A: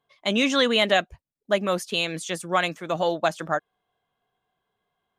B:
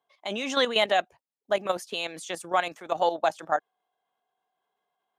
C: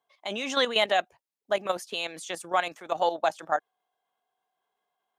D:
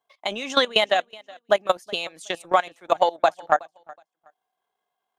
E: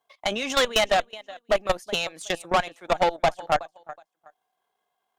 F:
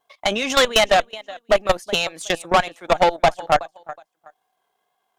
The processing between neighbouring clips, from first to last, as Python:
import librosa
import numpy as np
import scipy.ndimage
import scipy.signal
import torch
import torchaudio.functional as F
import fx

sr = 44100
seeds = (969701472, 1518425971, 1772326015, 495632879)

y1 = scipy.signal.sosfilt(scipy.signal.butter(2, 280.0, 'highpass', fs=sr, output='sos'), x)
y1 = fx.peak_eq(y1, sr, hz=800.0, db=7.5, octaves=0.56)
y1 = fx.level_steps(y1, sr, step_db=10)
y1 = y1 * librosa.db_to_amplitude(-1.0)
y2 = fx.low_shelf(y1, sr, hz=490.0, db=-3.0)
y3 = fx.transient(y2, sr, attack_db=9, sustain_db=-8)
y3 = fx.echo_feedback(y3, sr, ms=370, feedback_pct=22, wet_db=-23.0)
y4 = fx.tube_stage(y3, sr, drive_db=20.0, bias=0.5)
y4 = y4 * librosa.db_to_amplitude(5.0)
y5 = fx.wow_flutter(y4, sr, seeds[0], rate_hz=2.1, depth_cents=19.0)
y5 = y5 * librosa.db_to_amplitude(5.5)